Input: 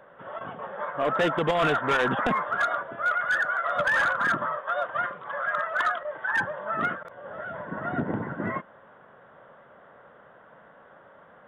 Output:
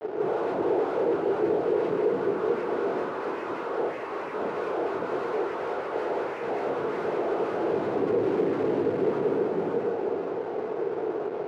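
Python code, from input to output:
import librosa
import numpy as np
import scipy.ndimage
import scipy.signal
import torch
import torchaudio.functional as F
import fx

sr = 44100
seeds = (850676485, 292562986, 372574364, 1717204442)

p1 = fx.rattle_buzz(x, sr, strikes_db=-39.0, level_db=-24.0)
p2 = p1 + fx.echo_heads(p1, sr, ms=189, heads='first and third', feedback_pct=52, wet_db=-11.0, dry=0)
p3 = fx.noise_vocoder(p2, sr, seeds[0], bands=8)
p4 = fx.over_compress(p3, sr, threshold_db=-34.0, ratio=-1.0)
p5 = fx.room_shoebox(p4, sr, seeds[1], volume_m3=150.0, walls='furnished', distance_m=3.9)
p6 = fx.fuzz(p5, sr, gain_db=38.0, gate_db=-41.0)
p7 = np.repeat(p6[::2], 2)[:len(p6)]
p8 = fx.bandpass_q(p7, sr, hz=410.0, q=3.7)
y = F.gain(torch.from_numpy(p8), -1.5).numpy()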